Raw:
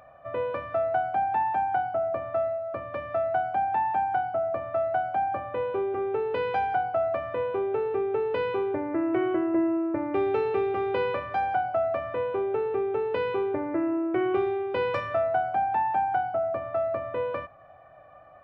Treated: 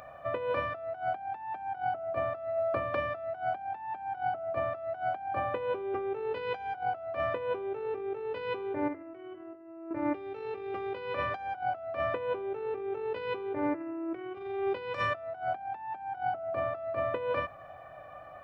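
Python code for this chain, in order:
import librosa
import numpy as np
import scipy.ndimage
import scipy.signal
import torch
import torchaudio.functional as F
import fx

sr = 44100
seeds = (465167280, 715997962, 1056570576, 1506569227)

y = fx.high_shelf(x, sr, hz=2600.0, db=7.5)
y = fx.over_compress(y, sr, threshold_db=-31.0, ratio=-0.5)
y = fx.comb_fb(y, sr, f0_hz=94.0, decay_s=0.4, harmonics='all', damping=0.0, mix_pct=70, at=(8.88, 9.91))
y = F.gain(torch.from_numpy(y), -2.0).numpy()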